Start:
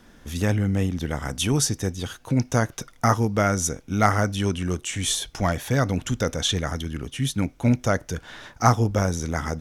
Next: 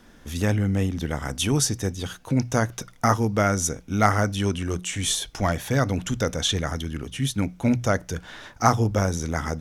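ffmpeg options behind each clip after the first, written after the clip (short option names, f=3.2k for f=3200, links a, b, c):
-af "bandreject=f=60:t=h:w=6,bandreject=f=120:t=h:w=6,bandreject=f=180:t=h:w=6"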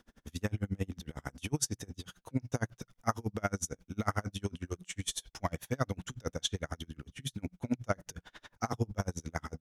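-af "aeval=exprs='val(0)*pow(10,-35*(0.5-0.5*cos(2*PI*11*n/s))/20)':c=same,volume=-6dB"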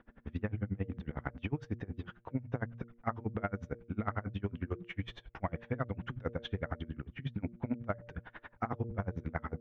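-af "lowpass=f=2.3k:w=0.5412,lowpass=f=2.3k:w=1.3066,bandreject=f=117:t=h:w=4,bandreject=f=234:t=h:w=4,bandreject=f=351:t=h:w=4,bandreject=f=468:t=h:w=4,bandreject=f=585:t=h:w=4,acompressor=threshold=-35dB:ratio=6,volume=4dB"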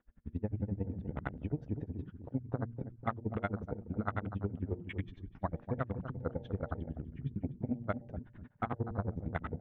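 -filter_complex "[0:a]asplit=2[a][b];[b]adelay=246,lowpass=f=1.3k:p=1,volume=-9dB,asplit=2[c][d];[d]adelay=246,lowpass=f=1.3k:p=1,volume=0.45,asplit=2[e][f];[f]adelay=246,lowpass=f=1.3k:p=1,volume=0.45,asplit=2[g][h];[h]adelay=246,lowpass=f=1.3k:p=1,volume=0.45,asplit=2[i][j];[j]adelay=246,lowpass=f=1.3k:p=1,volume=0.45[k];[c][e][g][i][k]amix=inputs=5:normalize=0[l];[a][l]amix=inputs=2:normalize=0,afwtdn=0.00794"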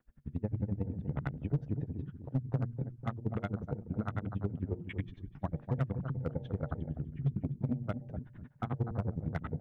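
-filter_complex "[0:a]equalizer=f=140:w=3.5:g=9.5,acrossover=split=460|3000[a][b][c];[b]acompressor=threshold=-39dB:ratio=5[d];[a][d][c]amix=inputs=3:normalize=0,asoftclip=type=hard:threshold=-23.5dB"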